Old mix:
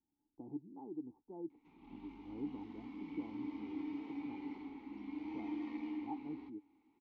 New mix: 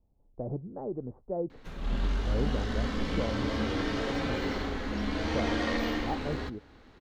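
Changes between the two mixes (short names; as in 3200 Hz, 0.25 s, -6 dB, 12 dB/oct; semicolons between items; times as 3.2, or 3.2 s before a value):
background +5.5 dB; master: remove vowel filter u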